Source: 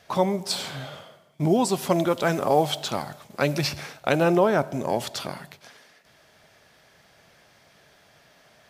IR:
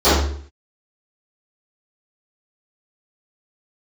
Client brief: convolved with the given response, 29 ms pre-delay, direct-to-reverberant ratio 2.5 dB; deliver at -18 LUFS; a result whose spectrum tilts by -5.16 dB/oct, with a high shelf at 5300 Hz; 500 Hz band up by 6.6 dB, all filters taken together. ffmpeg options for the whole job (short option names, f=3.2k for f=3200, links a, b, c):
-filter_complex "[0:a]equalizer=f=500:t=o:g=8,highshelf=f=5.3k:g=4.5,asplit=2[a][b];[1:a]atrim=start_sample=2205,adelay=29[c];[b][c]afir=irnorm=-1:irlink=0,volume=-29.5dB[d];[a][d]amix=inputs=2:normalize=0,volume=-2.5dB"